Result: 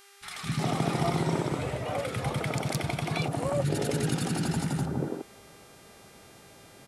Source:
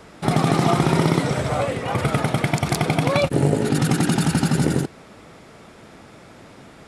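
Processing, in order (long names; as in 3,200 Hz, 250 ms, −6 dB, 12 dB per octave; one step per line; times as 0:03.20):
three-band delay without the direct sound highs, lows, mids 210/360 ms, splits 240/1,300 Hz
hum with harmonics 400 Hz, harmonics 31, −49 dBFS −2 dB per octave
level −8 dB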